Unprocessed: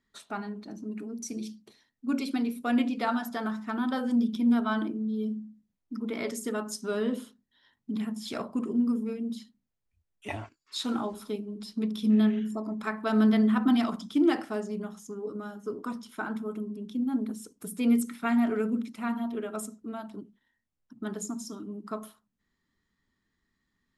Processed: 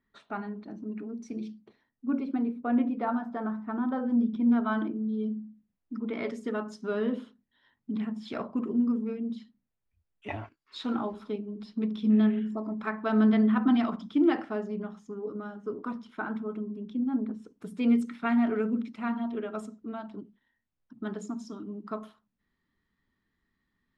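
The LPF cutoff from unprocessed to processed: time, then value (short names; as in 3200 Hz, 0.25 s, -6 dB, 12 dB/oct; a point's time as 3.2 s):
1.44 s 2400 Hz
2.17 s 1200 Hz
4 s 1200 Hz
4.98 s 2800 Hz
16.9 s 2800 Hz
17.35 s 1700 Hz
17.67 s 3600 Hz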